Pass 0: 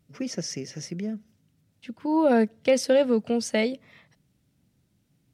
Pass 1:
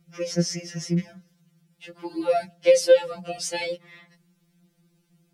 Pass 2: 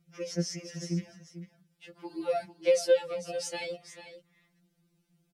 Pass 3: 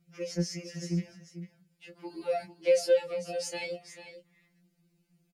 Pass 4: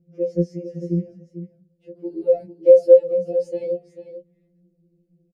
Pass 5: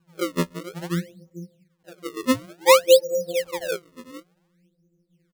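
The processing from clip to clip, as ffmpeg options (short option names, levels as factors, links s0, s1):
-filter_complex "[0:a]acrossover=split=220|440|2500[s0][s1][s2][s3];[s2]alimiter=level_in=1.19:limit=0.0631:level=0:latency=1:release=312,volume=0.841[s4];[s0][s1][s4][s3]amix=inputs=4:normalize=0,afftfilt=real='re*2.83*eq(mod(b,8),0)':imag='im*2.83*eq(mod(b,8),0)':win_size=2048:overlap=0.75,volume=2.11"
-af "aecho=1:1:445:0.237,volume=0.422"
-filter_complex "[0:a]asplit=2[s0][s1];[s1]asoftclip=type=tanh:threshold=0.0355,volume=0.299[s2];[s0][s2]amix=inputs=2:normalize=0,asplit=2[s3][s4];[s4]adelay=17,volume=0.531[s5];[s3][s5]amix=inputs=2:normalize=0,volume=0.668"
-af "firequalizer=gain_entry='entry(140,0);entry(490,10);entry(810,-20);entry(1200,-24)':delay=0.05:min_phase=1,volume=2.11"
-af "acrusher=samples=32:mix=1:aa=0.000001:lfo=1:lforange=51.2:lforate=0.56,volume=0.668"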